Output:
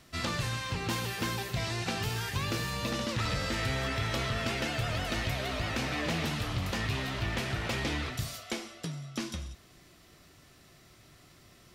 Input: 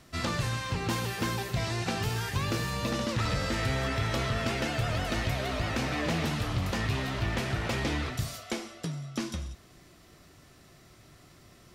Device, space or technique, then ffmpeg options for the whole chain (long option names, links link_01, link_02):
presence and air boost: -af "equalizer=frequency=3100:width_type=o:width=1.8:gain=3.5,highshelf=frequency=11000:gain=5,volume=-3dB"